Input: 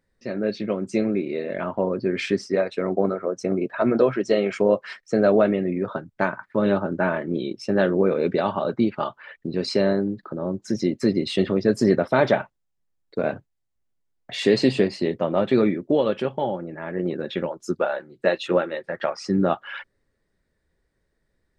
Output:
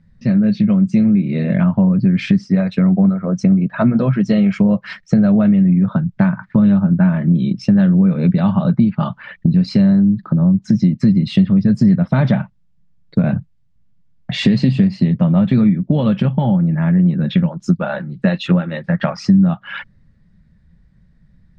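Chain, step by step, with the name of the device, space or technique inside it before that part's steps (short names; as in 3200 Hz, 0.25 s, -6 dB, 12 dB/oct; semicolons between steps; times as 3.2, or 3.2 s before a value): jukebox (LPF 5100 Hz 12 dB/oct; resonant low shelf 260 Hz +13 dB, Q 3; compressor 4:1, threshold -20 dBFS, peak gain reduction 15.5 dB); gain +8 dB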